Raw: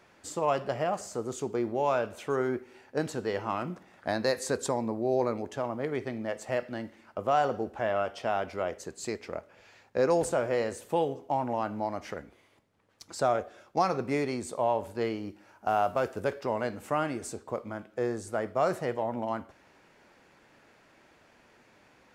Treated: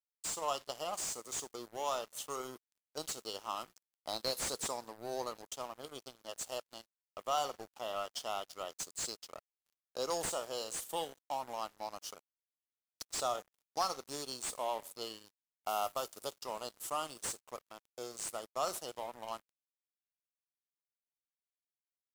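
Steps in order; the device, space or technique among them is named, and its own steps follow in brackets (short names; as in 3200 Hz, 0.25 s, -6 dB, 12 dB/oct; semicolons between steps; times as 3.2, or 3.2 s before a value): elliptic band-stop 1300–2900 Hz; differentiator; early transistor amplifier (crossover distortion -60 dBFS; slew limiter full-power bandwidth 25 Hz); gain +12.5 dB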